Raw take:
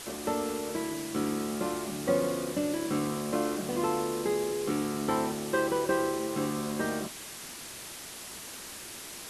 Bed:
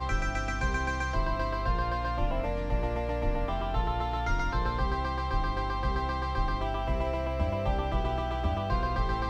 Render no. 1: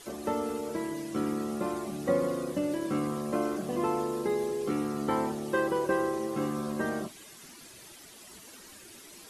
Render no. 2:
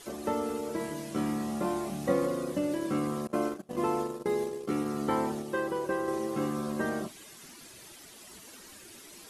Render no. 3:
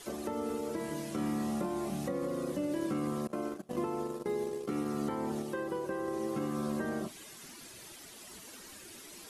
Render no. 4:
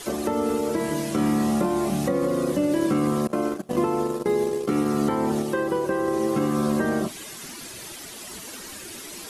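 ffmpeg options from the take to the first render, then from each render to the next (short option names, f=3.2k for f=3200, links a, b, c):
-af "afftdn=nr=11:nf=-43"
-filter_complex "[0:a]asettb=1/sr,asplit=3[a][b][c];[a]atrim=end=0.774[d];[b]atrim=start=0.77:end=2.26,asetpts=PTS-STARTPTS,afade=t=in:d=0.004:c=qsin,afade=t=out:st=1.486:d=0.004:c=qsin,asplit=2[e][f];[f]adelay=26,volume=-4dB[g];[e][g]amix=inputs=2:normalize=0,atrim=end_sample=65709[h];[c]atrim=start=2.256[i];[d][h]acrossfade=d=0.004:c1=hsin:c2=qsin[j];[j][i]acrossfade=d=0.004:c1=qsin:c2=hsin,asettb=1/sr,asplit=3[k][l][m];[k]atrim=end=3.274[n];[l]atrim=start=3.27:end=4.86,asetpts=PTS-STARTPTS,afade=t=in:d=0.004:c=qsin,afade=t=out:st=1.586:d=0.004:c=qsin,agate=range=-27dB:threshold=-32dB:ratio=16:release=100:detection=peak[o];[m]atrim=start=4.856[p];[n][o]acrossfade=d=0.004:c1=hsin:c2=qsin[q];[q][p]acrossfade=d=0.004:c1=qsin:c2=hsin,asplit=3[r][s][t];[r]atrim=end=5.422[u];[s]atrim=start=5.418:end=6.082,asetpts=PTS-STARTPTS,volume=-3.5dB[v];[t]atrim=start=6.078[w];[u][v]acrossfade=d=0.004:c1=hsin:c2=hsin[x];[x][w]acrossfade=d=0.004:c1=hsin:c2=hsin"
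-filter_complex "[0:a]alimiter=limit=-24dB:level=0:latency=1:release=182,acrossover=split=450[a][b];[b]acompressor=threshold=-39dB:ratio=3[c];[a][c]amix=inputs=2:normalize=0"
-af "volume=11.5dB"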